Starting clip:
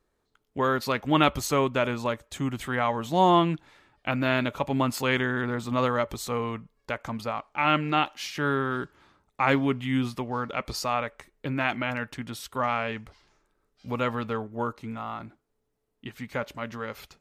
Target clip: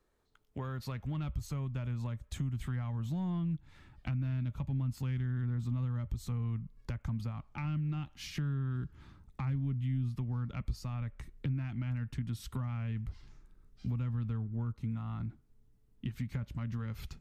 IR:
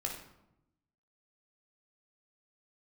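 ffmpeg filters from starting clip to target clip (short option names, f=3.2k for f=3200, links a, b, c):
-filter_complex "[0:a]acrossover=split=170[a][b];[b]acompressor=threshold=-40dB:ratio=3[c];[a][c]amix=inputs=2:normalize=0,asoftclip=type=tanh:threshold=-23dB,asubboost=boost=9.5:cutoff=170,acompressor=threshold=-34dB:ratio=2.5,volume=-2dB"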